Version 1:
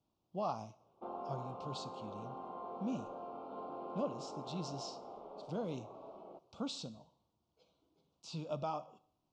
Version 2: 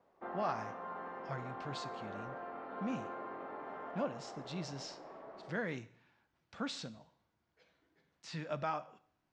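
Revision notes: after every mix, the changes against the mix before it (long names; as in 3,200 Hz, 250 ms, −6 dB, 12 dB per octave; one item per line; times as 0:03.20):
background: entry −0.80 s
master: remove Butterworth band-reject 1,800 Hz, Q 1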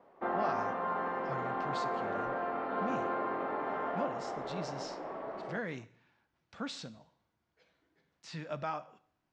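background +10.0 dB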